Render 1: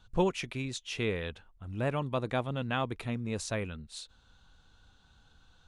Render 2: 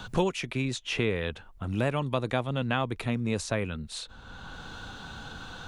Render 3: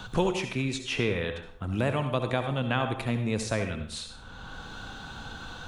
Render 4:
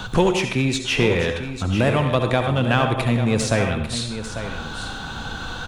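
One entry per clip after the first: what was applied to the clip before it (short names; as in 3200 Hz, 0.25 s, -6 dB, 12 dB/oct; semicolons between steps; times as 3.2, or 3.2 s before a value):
three-band squash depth 70%; gain +4 dB
reverb RT60 0.60 s, pre-delay 57 ms, DRR 6.5 dB
in parallel at -6 dB: hard clip -28.5 dBFS, distortion -6 dB; on the sum: echo 0.846 s -10.5 dB; gain +6.5 dB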